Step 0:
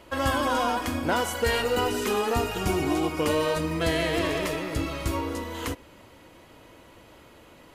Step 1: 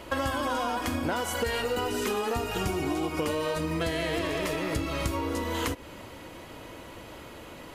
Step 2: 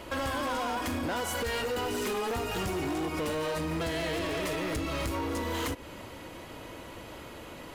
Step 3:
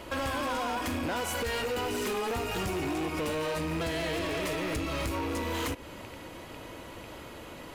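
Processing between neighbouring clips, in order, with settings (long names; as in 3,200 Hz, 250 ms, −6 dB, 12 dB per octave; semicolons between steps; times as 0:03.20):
downward compressor 10 to 1, threshold −33 dBFS, peak gain reduction 13.5 dB; level +7 dB
hard clipping −28.5 dBFS, distortion −11 dB
loose part that buzzes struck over −42 dBFS, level −33 dBFS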